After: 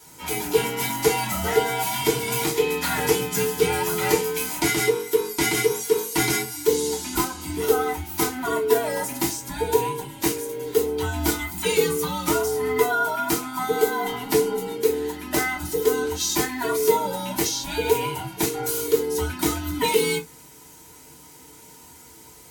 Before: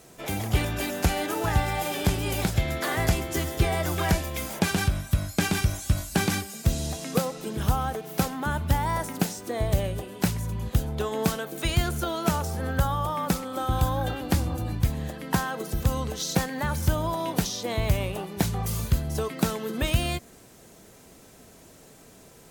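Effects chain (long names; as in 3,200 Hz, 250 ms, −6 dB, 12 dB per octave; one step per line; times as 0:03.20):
frequency inversion band by band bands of 500 Hz
high-pass filter 88 Hz 12 dB per octave
high-shelf EQ 3,000 Hz +9.5 dB
0:10.24–0:12.49: background noise violet −59 dBFS
convolution reverb, pre-delay 3 ms, DRR −4.5 dB
level −6 dB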